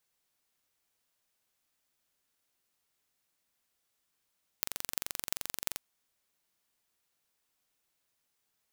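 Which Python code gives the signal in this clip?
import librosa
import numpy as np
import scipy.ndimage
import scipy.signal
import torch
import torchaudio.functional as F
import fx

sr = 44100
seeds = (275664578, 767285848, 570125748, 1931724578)

y = fx.impulse_train(sr, length_s=1.14, per_s=23.0, accent_every=8, level_db=-2.0)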